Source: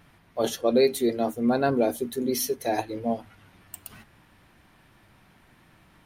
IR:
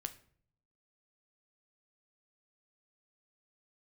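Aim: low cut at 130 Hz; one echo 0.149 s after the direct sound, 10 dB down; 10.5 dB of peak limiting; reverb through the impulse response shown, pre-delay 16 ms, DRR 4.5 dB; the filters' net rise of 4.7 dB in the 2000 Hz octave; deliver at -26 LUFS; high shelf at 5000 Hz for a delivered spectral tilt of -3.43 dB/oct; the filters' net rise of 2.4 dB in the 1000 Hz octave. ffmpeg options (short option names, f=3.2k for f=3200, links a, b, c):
-filter_complex "[0:a]highpass=130,equalizer=f=1k:t=o:g=3,equalizer=f=2k:t=o:g=4,highshelf=f=5k:g=8,alimiter=limit=-18dB:level=0:latency=1,aecho=1:1:149:0.316,asplit=2[a][b];[1:a]atrim=start_sample=2205,adelay=16[c];[b][c]afir=irnorm=-1:irlink=0,volume=-2.5dB[d];[a][d]amix=inputs=2:normalize=0,volume=0.5dB"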